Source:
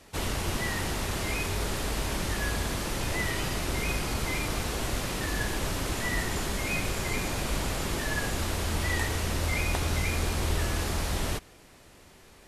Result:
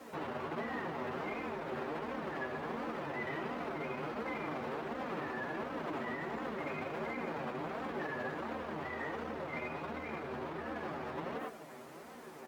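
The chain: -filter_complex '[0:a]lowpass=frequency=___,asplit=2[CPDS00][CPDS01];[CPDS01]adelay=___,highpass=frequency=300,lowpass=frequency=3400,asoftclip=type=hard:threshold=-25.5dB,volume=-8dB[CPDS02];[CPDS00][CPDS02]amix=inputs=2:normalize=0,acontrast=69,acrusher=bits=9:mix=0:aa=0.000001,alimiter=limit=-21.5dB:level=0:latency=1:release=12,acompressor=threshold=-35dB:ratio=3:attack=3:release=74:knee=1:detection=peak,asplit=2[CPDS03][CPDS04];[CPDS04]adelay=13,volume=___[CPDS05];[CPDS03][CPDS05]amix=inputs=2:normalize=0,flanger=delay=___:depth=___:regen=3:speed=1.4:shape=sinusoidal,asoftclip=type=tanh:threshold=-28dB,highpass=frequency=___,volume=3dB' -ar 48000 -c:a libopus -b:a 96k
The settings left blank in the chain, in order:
1400, 90, -5.5dB, 3.8, 4.3, 230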